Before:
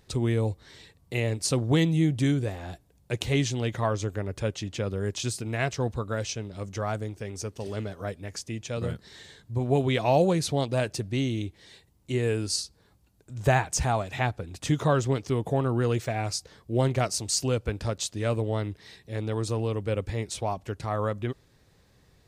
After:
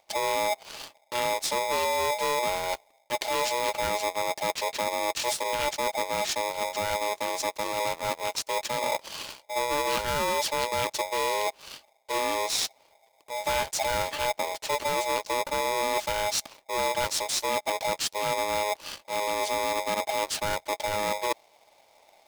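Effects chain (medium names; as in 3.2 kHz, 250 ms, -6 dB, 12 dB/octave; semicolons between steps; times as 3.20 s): graphic EQ 250/500/1000/4000/8000 Hz +4/-9/-9/+3/-4 dB; waveshaping leveller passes 2; reverse; compression 6:1, threshold -32 dBFS, peak gain reduction 15.5 dB; reverse; polarity switched at an audio rate 730 Hz; trim +5.5 dB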